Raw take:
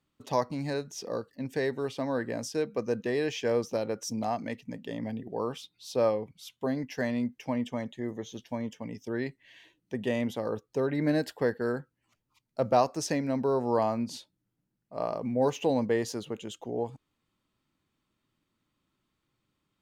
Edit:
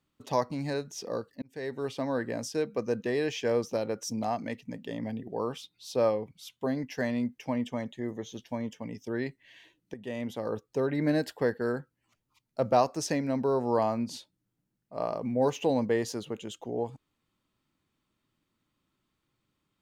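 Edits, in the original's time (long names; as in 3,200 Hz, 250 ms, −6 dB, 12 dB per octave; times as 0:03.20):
0:01.42–0:01.89: fade in
0:09.94–0:10.55: fade in, from −13.5 dB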